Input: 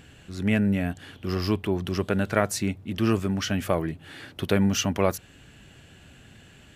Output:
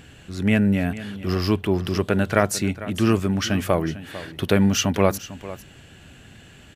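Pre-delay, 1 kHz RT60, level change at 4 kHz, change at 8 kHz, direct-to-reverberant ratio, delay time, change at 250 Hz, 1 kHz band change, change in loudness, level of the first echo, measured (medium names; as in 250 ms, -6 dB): no reverb, no reverb, +4.0 dB, +4.0 dB, no reverb, 449 ms, +4.0 dB, +4.0 dB, +4.0 dB, -15.5 dB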